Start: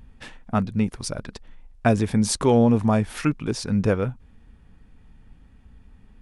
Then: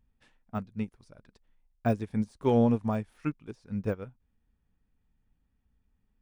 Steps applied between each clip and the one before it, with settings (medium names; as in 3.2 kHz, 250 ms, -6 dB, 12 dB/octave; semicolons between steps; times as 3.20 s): de-esser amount 95%; upward expansion 2.5:1, over -27 dBFS; trim -4.5 dB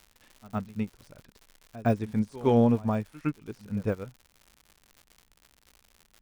pre-echo 112 ms -19 dB; crackle 140 per s -43 dBFS; trim +2 dB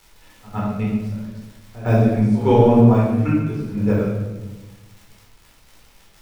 simulated room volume 580 m³, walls mixed, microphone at 4.2 m